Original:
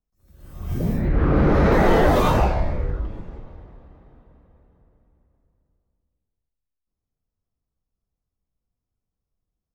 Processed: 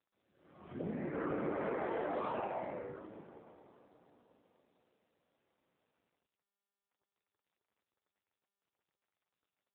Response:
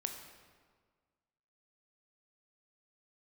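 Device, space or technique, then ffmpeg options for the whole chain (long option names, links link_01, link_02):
voicemail: -af "highpass=300,lowpass=2800,acompressor=threshold=-25dB:ratio=10,volume=-7.5dB" -ar 8000 -c:a libopencore_amrnb -b:a 7400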